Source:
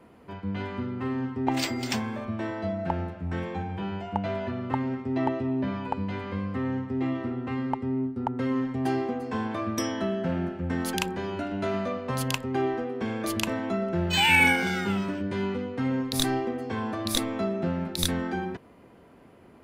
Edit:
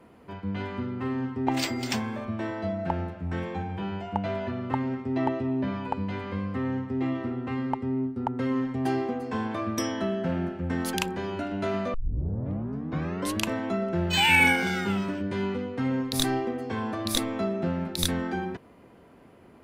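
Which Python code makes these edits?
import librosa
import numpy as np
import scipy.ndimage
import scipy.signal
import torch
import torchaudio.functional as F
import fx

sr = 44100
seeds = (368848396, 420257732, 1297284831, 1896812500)

y = fx.edit(x, sr, fx.tape_start(start_s=11.94, length_s=1.49), tone=tone)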